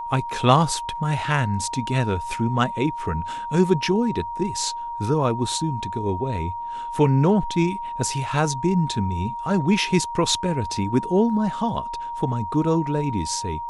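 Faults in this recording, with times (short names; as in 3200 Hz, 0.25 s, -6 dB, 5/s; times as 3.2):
tone 940 Hz -28 dBFS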